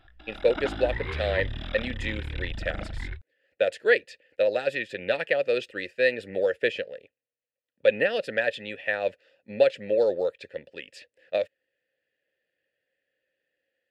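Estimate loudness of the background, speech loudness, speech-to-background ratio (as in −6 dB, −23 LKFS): −35.5 LKFS, −27.0 LKFS, 8.5 dB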